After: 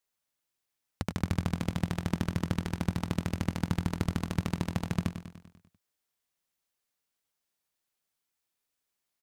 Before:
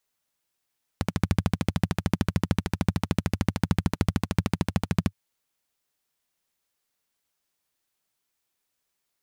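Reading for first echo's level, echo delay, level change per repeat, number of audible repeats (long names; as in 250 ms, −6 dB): −10.0 dB, 98 ms, −5.0 dB, 6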